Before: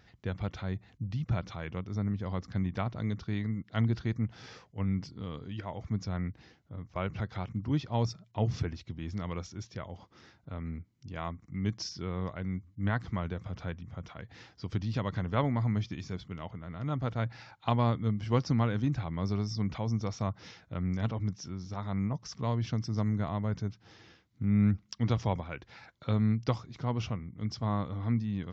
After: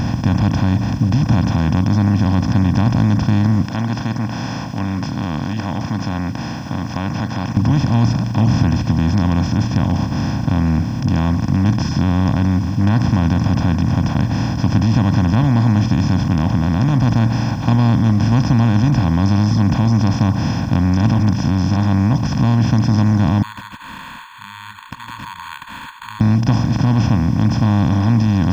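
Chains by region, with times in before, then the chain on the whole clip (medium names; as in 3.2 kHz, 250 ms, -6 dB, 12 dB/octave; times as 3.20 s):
3.65–7.57 s: high-pass 1.1 kHz + treble shelf 3.5 kHz -9 dB + tape noise reduction on one side only encoder only
23.42–26.21 s: compression 2.5:1, threshold -38 dBFS + brick-wall FIR high-pass 900 Hz + careless resampling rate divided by 8×, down filtered, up hold
whole clip: spectral levelling over time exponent 0.2; resonant low shelf 370 Hz +7 dB, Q 1.5; comb 1.2 ms, depth 68%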